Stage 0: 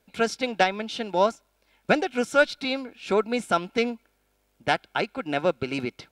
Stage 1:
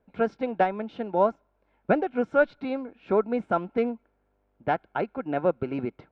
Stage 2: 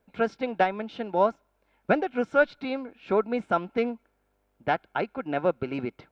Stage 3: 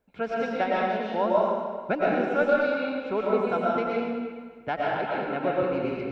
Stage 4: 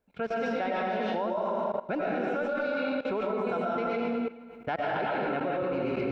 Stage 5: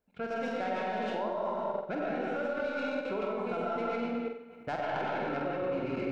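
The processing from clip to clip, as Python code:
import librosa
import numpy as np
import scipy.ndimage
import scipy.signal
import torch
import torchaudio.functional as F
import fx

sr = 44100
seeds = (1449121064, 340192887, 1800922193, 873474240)

y1 = scipy.signal.sosfilt(scipy.signal.butter(2, 1200.0, 'lowpass', fs=sr, output='sos'), x)
y2 = fx.high_shelf(y1, sr, hz=2100.0, db=11.0)
y2 = y2 * librosa.db_to_amplitude(-1.5)
y3 = fx.rev_freeverb(y2, sr, rt60_s=1.6, hf_ratio=0.85, predelay_ms=75, drr_db=-5.5)
y3 = y3 * librosa.db_to_amplitude(-5.0)
y4 = fx.level_steps(y3, sr, step_db=17)
y4 = y4 * librosa.db_to_amplitude(4.5)
y5 = fx.tracing_dist(y4, sr, depth_ms=0.046)
y5 = fx.room_flutter(y5, sr, wall_m=8.1, rt60_s=0.5)
y5 = y5 * librosa.db_to_amplitude(-4.5)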